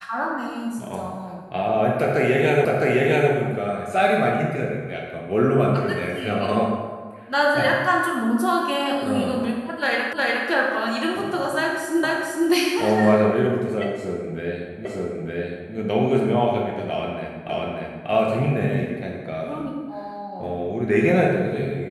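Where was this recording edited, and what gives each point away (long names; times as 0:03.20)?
0:02.65: the same again, the last 0.66 s
0:10.13: the same again, the last 0.36 s
0:12.03: the same again, the last 0.46 s
0:14.85: the same again, the last 0.91 s
0:17.49: the same again, the last 0.59 s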